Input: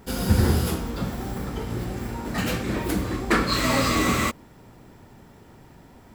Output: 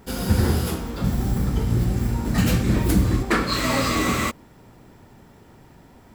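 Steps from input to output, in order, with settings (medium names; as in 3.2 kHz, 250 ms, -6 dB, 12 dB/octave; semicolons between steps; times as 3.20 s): 1.04–3.23 s: tone controls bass +11 dB, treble +5 dB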